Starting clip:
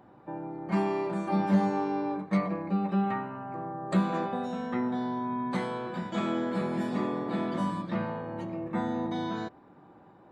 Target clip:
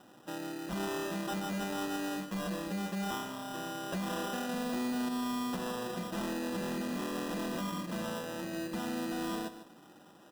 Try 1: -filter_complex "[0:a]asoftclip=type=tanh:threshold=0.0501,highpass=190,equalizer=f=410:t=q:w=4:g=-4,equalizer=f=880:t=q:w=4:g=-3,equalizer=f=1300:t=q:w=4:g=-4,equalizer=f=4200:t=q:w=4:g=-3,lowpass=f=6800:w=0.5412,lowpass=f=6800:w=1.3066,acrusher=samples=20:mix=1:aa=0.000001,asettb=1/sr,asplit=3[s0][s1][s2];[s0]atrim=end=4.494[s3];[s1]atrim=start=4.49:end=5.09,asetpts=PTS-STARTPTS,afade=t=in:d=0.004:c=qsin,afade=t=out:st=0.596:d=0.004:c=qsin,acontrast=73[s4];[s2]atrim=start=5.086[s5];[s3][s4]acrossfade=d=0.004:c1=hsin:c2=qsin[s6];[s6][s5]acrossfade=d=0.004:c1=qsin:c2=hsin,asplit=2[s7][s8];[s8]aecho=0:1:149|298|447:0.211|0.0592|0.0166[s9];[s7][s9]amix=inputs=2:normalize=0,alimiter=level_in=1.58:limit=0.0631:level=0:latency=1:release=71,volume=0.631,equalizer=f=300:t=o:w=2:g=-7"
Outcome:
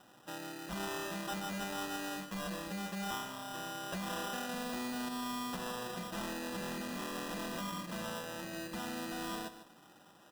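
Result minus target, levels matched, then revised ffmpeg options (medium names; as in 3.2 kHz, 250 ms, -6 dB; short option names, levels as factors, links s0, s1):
250 Hz band -2.5 dB
-filter_complex "[0:a]asoftclip=type=tanh:threshold=0.0501,highpass=190,equalizer=f=410:t=q:w=4:g=-4,equalizer=f=880:t=q:w=4:g=-3,equalizer=f=1300:t=q:w=4:g=-4,equalizer=f=4200:t=q:w=4:g=-3,lowpass=f=6800:w=0.5412,lowpass=f=6800:w=1.3066,acrusher=samples=20:mix=1:aa=0.000001,asettb=1/sr,asplit=3[s0][s1][s2];[s0]atrim=end=4.494[s3];[s1]atrim=start=4.49:end=5.09,asetpts=PTS-STARTPTS,afade=t=in:d=0.004:c=qsin,afade=t=out:st=0.596:d=0.004:c=qsin,acontrast=73[s4];[s2]atrim=start=5.086[s5];[s3][s4]acrossfade=d=0.004:c1=hsin:c2=qsin[s6];[s6][s5]acrossfade=d=0.004:c1=qsin:c2=hsin,asplit=2[s7][s8];[s8]aecho=0:1:149|298|447:0.211|0.0592|0.0166[s9];[s7][s9]amix=inputs=2:normalize=0,alimiter=level_in=1.58:limit=0.0631:level=0:latency=1:release=71,volume=0.631"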